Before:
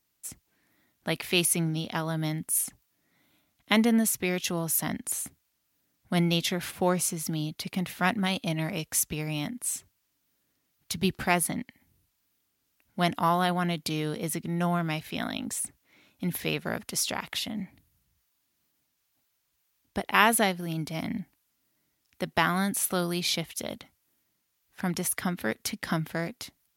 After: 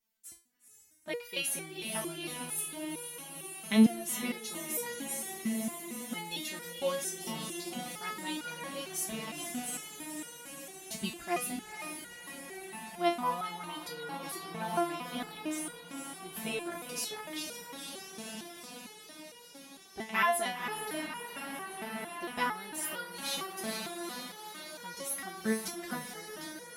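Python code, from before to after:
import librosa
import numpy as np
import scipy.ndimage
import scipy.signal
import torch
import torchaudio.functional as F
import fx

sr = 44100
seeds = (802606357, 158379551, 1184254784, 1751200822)

y = fx.echo_diffused(x, sr, ms=483, feedback_pct=77, wet_db=-6.0)
y = fx.resonator_held(y, sr, hz=4.4, low_hz=220.0, high_hz=480.0)
y = F.gain(torch.from_numpy(y), 6.0).numpy()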